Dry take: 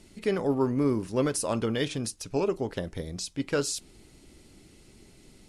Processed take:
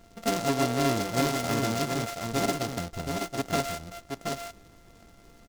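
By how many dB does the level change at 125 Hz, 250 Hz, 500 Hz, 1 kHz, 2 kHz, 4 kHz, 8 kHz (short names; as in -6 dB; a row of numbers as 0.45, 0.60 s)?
+1.5, -0.5, -1.5, +7.5, +4.5, +3.5, 0.0 dB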